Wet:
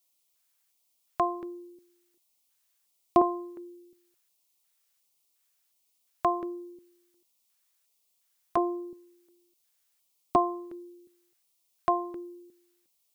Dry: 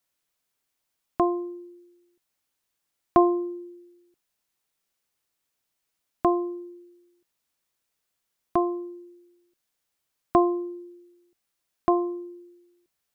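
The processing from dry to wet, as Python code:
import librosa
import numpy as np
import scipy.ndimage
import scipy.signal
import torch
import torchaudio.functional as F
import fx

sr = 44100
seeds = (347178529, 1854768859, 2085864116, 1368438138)

y = fx.tilt_eq(x, sr, slope=2.0)
y = fx.filter_lfo_notch(y, sr, shape='square', hz=1.4, low_hz=280.0, high_hz=1600.0, q=1.1)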